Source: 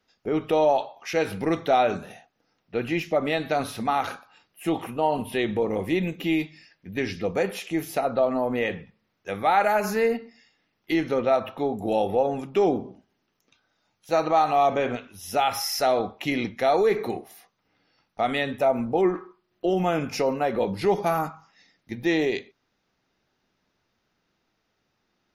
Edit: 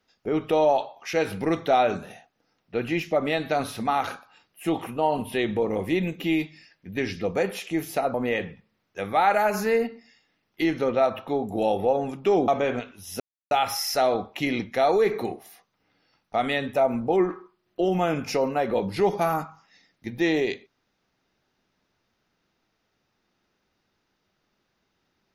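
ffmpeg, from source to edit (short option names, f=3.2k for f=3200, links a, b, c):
-filter_complex "[0:a]asplit=4[a][b][c][d];[a]atrim=end=8.142[e];[b]atrim=start=8.438:end=12.782[f];[c]atrim=start=14.638:end=15.36,asetpts=PTS-STARTPTS,afade=t=out:st=0.718:d=0.004:c=hsin,apad=pad_dur=0.31[g];[d]atrim=start=15.36,asetpts=PTS-STARTPTS,afade=t=in:d=0.004:c=hsin[h];[e][f]acrossfade=d=0.004:c1=hsin:c2=hsin[i];[g][h]concat=n=2:v=0:a=1[j];[i][j]acrossfade=d=0.004:c1=hsin:c2=hsin"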